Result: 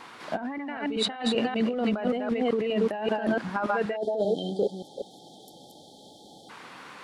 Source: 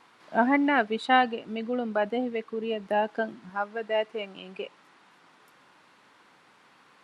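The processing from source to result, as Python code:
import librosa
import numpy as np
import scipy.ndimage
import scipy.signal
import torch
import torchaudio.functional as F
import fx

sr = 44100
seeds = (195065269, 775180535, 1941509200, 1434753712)

y = fx.reverse_delay(x, sr, ms=193, wet_db=-4.5)
y = fx.spec_erase(y, sr, start_s=3.96, length_s=2.53, low_hz=880.0, high_hz=3100.0)
y = fx.over_compress(y, sr, threshold_db=-34.0, ratio=-1.0)
y = y * 10.0 ** (5.5 / 20.0)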